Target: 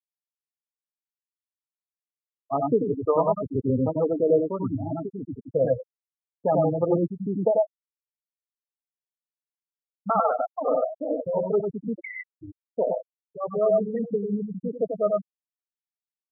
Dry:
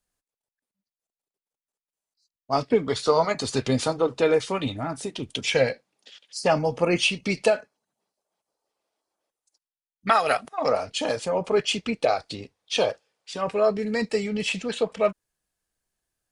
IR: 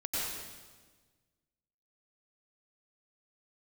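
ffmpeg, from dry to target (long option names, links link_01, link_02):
-filter_complex "[1:a]atrim=start_sample=2205,atrim=end_sample=4410[link_01];[0:a][link_01]afir=irnorm=-1:irlink=0,asettb=1/sr,asplit=3[link_02][link_03][link_04];[link_02]atrim=end=11.954[link_05];[link_03]atrim=start=11.95:end=12.39,asetpts=PTS-STARTPTS,afade=type=in:duration=0.004:curve=qsin,afade=type=out:start_time=0.436:duration=0.004:curve=qsin,lowpass=frequency=2300:width_type=q:width=0.5098,lowpass=frequency=2300:width_type=q:width=0.6013,lowpass=frequency=2300:width_type=q:width=0.9,lowpass=frequency=2300:width_type=q:width=2.563,afreqshift=-2700[link_06];[link_04]atrim=start=12.386[link_07];[link_05][link_06]acrossfade=duration=0.004:curve1=hsin:curve2=qsin[link_08];[link_08][link_07]acrossfade=duration=0.004:curve1=qsin:curve2=hsin,aemphasis=mode=reproduction:type=75kf,acrossover=split=1600[link_09][link_10];[link_10]acompressor=threshold=-49dB:ratio=10[link_11];[link_09][link_11]amix=inputs=2:normalize=0,afftfilt=real='re*gte(hypot(re,im),0.112)':imag='im*gte(hypot(re,im),0.112)':win_size=1024:overlap=0.75,volume=2dB"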